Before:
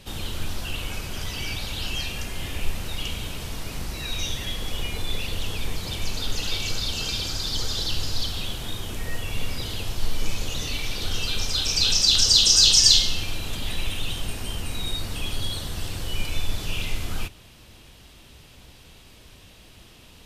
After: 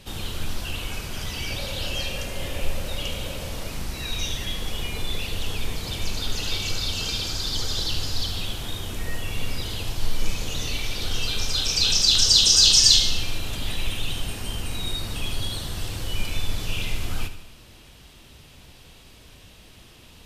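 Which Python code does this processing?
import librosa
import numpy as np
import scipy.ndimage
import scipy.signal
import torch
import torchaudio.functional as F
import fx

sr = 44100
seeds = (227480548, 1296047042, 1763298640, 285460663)

y = fx.peak_eq(x, sr, hz=550.0, db=12.5, octaves=0.33, at=(1.5, 3.68))
y = fx.echo_feedback(y, sr, ms=76, feedback_pct=52, wet_db=-11.5)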